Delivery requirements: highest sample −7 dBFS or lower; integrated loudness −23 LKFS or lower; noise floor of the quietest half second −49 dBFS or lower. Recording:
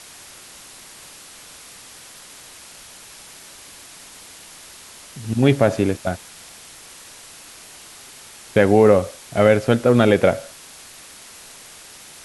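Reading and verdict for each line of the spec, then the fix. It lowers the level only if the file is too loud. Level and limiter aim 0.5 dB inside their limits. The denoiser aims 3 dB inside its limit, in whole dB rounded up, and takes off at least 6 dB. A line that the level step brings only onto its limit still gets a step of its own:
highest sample −2.0 dBFS: out of spec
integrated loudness −17.5 LKFS: out of spec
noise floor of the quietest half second −42 dBFS: out of spec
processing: broadband denoise 6 dB, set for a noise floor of −42 dBFS
level −6 dB

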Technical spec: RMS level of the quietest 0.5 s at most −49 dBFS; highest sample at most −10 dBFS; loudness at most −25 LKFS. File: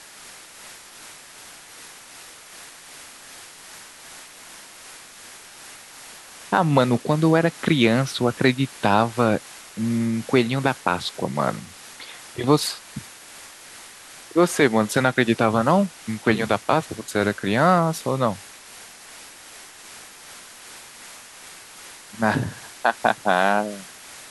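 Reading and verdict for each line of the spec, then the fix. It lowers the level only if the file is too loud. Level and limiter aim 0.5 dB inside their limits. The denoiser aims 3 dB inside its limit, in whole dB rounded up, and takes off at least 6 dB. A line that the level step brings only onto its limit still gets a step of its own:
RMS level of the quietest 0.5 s −44 dBFS: out of spec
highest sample −2.0 dBFS: out of spec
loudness −21.5 LKFS: out of spec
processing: broadband denoise 6 dB, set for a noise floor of −44 dBFS
level −4 dB
brickwall limiter −10.5 dBFS

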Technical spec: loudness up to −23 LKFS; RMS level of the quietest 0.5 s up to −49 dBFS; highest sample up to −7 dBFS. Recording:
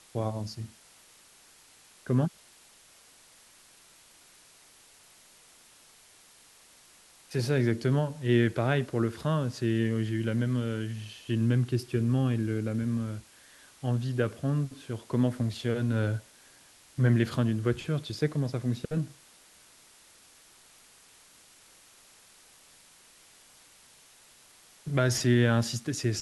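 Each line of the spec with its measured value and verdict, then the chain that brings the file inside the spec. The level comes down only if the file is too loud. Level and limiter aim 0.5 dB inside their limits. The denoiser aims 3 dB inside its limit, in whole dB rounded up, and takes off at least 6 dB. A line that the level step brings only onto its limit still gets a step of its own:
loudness −29.0 LKFS: in spec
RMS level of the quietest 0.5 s −58 dBFS: in spec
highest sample −10.0 dBFS: in spec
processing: no processing needed

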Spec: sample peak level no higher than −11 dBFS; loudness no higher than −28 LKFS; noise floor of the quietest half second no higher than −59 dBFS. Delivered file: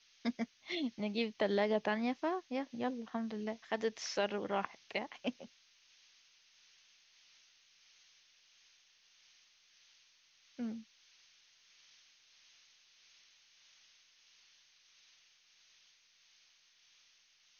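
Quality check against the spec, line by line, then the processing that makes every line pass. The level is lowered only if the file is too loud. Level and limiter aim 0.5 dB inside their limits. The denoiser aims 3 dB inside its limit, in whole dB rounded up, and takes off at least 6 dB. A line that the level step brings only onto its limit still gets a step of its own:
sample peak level −20.0 dBFS: in spec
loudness −38.0 LKFS: in spec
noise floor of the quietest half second −69 dBFS: in spec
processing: no processing needed

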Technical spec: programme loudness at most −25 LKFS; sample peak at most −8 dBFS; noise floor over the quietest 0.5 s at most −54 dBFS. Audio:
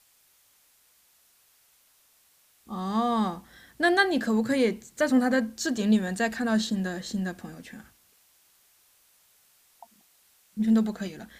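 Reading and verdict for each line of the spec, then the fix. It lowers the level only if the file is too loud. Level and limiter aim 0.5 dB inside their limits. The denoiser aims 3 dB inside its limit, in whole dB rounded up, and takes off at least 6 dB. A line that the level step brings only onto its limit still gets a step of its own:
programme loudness −26.0 LKFS: in spec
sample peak −11.0 dBFS: in spec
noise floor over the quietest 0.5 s −63 dBFS: in spec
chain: no processing needed

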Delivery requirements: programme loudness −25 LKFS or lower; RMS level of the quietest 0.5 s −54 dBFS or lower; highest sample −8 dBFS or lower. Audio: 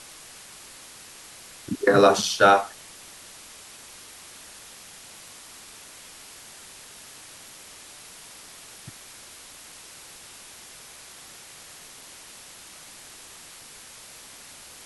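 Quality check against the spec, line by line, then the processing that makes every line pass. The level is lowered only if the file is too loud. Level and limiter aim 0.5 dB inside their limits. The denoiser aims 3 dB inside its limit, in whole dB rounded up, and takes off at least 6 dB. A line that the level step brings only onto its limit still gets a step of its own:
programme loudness −19.5 LKFS: out of spec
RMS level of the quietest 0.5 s −46 dBFS: out of spec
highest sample −4.5 dBFS: out of spec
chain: broadband denoise 6 dB, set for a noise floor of −46 dBFS
level −6 dB

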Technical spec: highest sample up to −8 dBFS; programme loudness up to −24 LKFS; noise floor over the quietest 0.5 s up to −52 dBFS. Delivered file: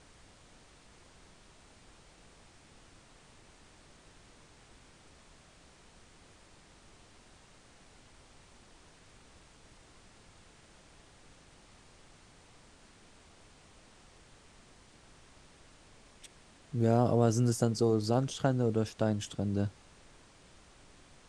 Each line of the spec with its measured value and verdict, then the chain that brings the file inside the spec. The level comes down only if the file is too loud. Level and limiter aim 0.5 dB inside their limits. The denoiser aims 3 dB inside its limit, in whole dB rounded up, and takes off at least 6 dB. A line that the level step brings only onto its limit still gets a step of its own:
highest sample −13.0 dBFS: in spec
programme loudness −30.0 LKFS: in spec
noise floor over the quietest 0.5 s −59 dBFS: in spec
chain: no processing needed

